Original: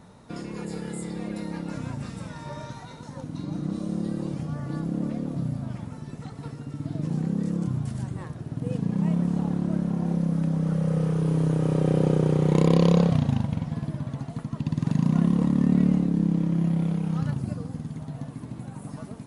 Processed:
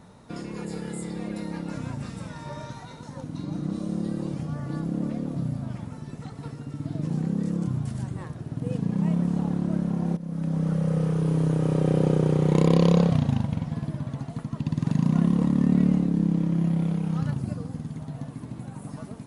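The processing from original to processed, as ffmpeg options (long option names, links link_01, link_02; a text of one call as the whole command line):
ffmpeg -i in.wav -filter_complex "[0:a]asplit=2[link_01][link_02];[link_01]atrim=end=10.17,asetpts=PTS-STARTPTS,afade=type=out:start_time=10.166:duration=0.004:curve=hsin:silence=0.16788[link_03];[link_02]atrim=start=10.17,asetpts=PTS-STARTPTS,afade=type=in:duration=0.42:silence=0.16788[link_04];[link_03][link_04]concat=n=2:v=0:a=1" out.wav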